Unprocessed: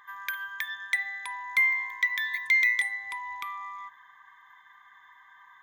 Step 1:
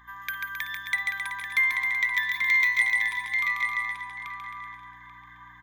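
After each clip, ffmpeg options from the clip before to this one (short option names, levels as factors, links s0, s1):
-filter_complex "[0:a]asplit=2[s0][s1];[s1]adelay=836,lowpass=f=4500:p=1,volume=0.631,asplit=2[s2][s3];[s3]adelay=836,lowpass=f=4500:p=1,volume=0.18,asplit=2[s4][s5];[s5]adelay=836,lowpass=f=4500:p=1,volume=0.18[s6];[s2][s4][s6]amix=inputs=3:normalize=0[s7];[s0][s7]amix=inputs=2:normalize=0,aeval=exprs='val(0)+0.00112*(sin(2*PI*60*n/s)+sin(2*PI*2*60*n/s)/2+sin(2*PI*3*60*n/s)/3+sin(2*PI*4*60*n/s)/4+sin(2*PI*5*60*n/s)/5)':c=same,asplit=2[s8][s9];[s9]aecho=0:1:140|266|379.4|481.5|573.3:0.631|0.398|0.251|0.158|0.1[s10];[s8][s10]amix=inputs=2:normalize=0"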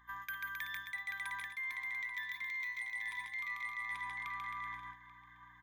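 -af "alimiter=limit=0.112:level=0:latency=1:release=319,areverse,acompressor=threshold=0.0158:ratio=16,areverse,agate=range=0.398:threshold=0.00562:ratio=16:detection=peak,volume=0.794"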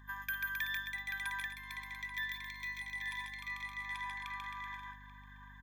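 -af "highpass=f=1300:p=1,aecho=1:1:1.2:0.89,aeval=exprs='val(0)+0.00141*(sin(2*PI*50*n/s)+sin(2*PI*2*50*n/s)/2+sin(2*PI*3*50*n/s)/3+sin(2*PI*4*50*n/s)/4+sin(2*PI*5*50*n/s)/5)':c=same,volume=1.26"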